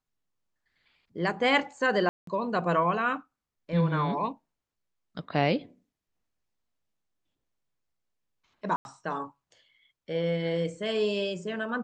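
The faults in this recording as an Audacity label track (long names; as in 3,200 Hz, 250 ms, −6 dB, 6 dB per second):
2.090000	2.270000	drop-out 183 ms
8.760000	8.850000	drop-out 91 ms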